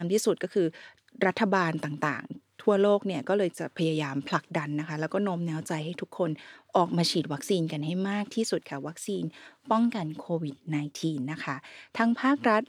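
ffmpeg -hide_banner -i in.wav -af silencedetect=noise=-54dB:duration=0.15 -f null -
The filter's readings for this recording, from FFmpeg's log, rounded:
silence_start: 2.39
silence_end: 2.59 | silence_duration: 0.20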